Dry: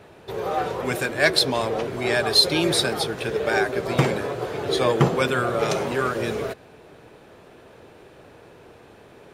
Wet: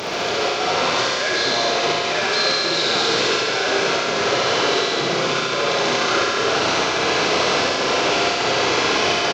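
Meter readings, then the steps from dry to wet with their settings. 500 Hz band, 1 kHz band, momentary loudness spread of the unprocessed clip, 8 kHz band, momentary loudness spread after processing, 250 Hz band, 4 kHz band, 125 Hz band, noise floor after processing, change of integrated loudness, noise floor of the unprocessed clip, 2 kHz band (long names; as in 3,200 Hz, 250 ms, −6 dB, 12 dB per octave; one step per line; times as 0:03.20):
+3.5 dB, +8.0 dB, 10 LU, +8.0 dB, 2 LU, +1.0 dB, +7.0 dB, −5.5 dB, −22 dBFS, +4.0 dB, −49 dBFS, +7.0 dB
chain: linear delta modulator 32 kbit/s, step −16.5 dBFS
high-pass filter 340 Hz 6 dB per octave
notch filter 1,800 Hz, Q 11
automatic gain control
brickwall limiter −13 dBFS, peak gain reduction 11.5 dB
gate pattern "xxxx.xxxx.xx" 125 BPM
double-tracking delay 30 ms −13 dB
on a send: feedback echo with a high-pass in the loop 69 ms, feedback 80%, high-pass 890 Hz, level −3.5 dB
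on the sum: four-comb reverb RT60 2 s, combs from 33 ms, DRR −1.5 dB
level −3.5 dB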